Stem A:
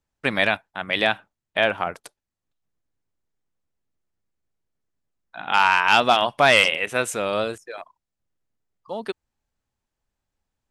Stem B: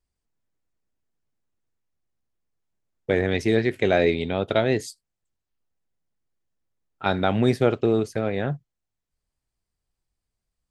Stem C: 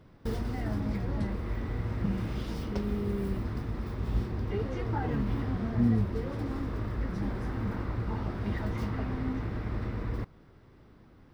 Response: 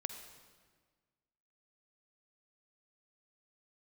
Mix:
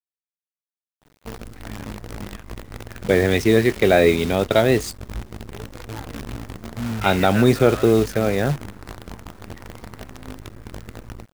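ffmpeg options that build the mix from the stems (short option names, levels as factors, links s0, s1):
-filter_complex "[0:a]equalizer=f=1600:t=o:w=1.3:g=13.5,adelay=400,volume=0.168,asplit=2[s0][s1];[s1]volume=0.0841[s2];[1:a]acontrast=41,volume=1,asplit=2[s3][s4];[2:a]flanger=delay=17.5:depth=3.7:speed=0.18,adelay=1000,volume=0.841[s5];[s4]apad=whole_len=489584[s6];[s0][s6]sidechaingate=range=0.00316:threshold=0.02:ratio=16:detection=peak[s7];[s2]aecho=0:1:909:1[s8];[s7][s3][s5][s8]amix=inputs=4:normalize=0,acrusher=bits=6:dc=4:mix=0:aa=0.000001"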